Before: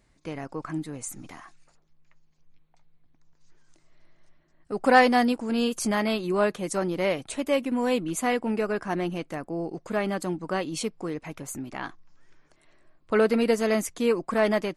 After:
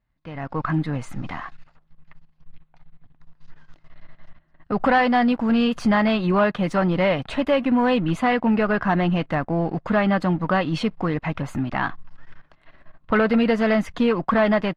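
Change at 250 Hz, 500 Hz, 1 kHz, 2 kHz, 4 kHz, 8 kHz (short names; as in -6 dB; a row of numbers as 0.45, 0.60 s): +7.0 dB, +2.5 dB, +4.5 dB, +4.5 dB, +2.5 dB, under -10 dB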